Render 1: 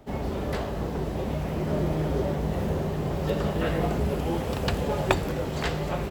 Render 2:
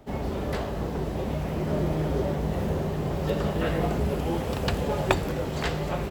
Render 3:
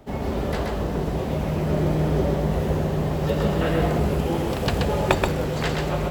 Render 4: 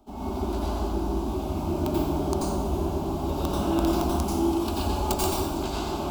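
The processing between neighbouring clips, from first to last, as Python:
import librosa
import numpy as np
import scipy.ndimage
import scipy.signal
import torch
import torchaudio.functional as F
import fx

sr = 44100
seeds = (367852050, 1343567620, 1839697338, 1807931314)

y1 = x
y2 = y1 + 10.0 ** (-3.5 / 20.0) * np.pad(y1, (int(129 * sr / 1000.0), 0))[:len(y1)]
y2 = y2 * librosa.db_to_amplitude(2.5)
y3 = (np.mod(10.0 ** (11.0 / 20.0) * y2 + 1.0, 2.0) - 1.0) / 10.0 ** (11.0 / 20.0)
y3 = fx.fixed_phaser(y3, sr, hz=500.0, stages=6)
y3 = fx.rev_plate(y3, sr, seeds[0], rt60_s=0.93, hf_ratio=0.85, predelay_ms=75, drr_db=-5.5)
y3 = y3 * librosa.db_to_amplitude(-6.5)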